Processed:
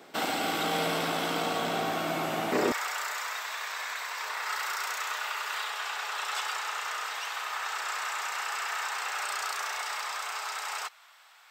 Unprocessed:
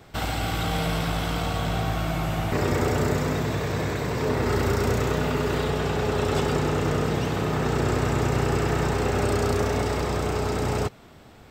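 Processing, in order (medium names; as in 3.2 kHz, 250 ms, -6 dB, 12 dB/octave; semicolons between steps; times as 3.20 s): high-pass 230 Hz 24 dB/octave, from 2.72 s 1 kHz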